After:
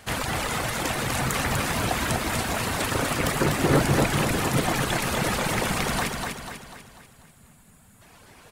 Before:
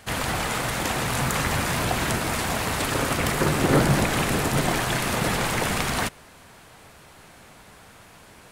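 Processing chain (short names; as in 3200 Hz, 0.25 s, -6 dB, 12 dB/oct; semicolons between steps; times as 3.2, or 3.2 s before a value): reverb removal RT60 1.2 s; spectral gain 6.72–8.02, 270–6600 Hz -11 dB; feedback echo 0.246 s, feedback 48%, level -4 dB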